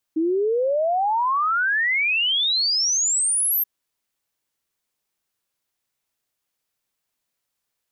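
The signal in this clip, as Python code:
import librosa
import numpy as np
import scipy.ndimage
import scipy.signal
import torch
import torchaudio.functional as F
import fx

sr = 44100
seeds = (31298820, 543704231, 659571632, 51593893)

y = fx.ess(sr, length_s=3.48, from_hz=310.0, to_hz=13000.0, level_db=-18.0)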